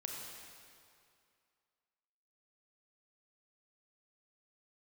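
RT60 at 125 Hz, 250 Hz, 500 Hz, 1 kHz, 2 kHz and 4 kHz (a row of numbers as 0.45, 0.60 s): 2.2, 2.2, 2.3, 2.4, 2.2, 2.0 s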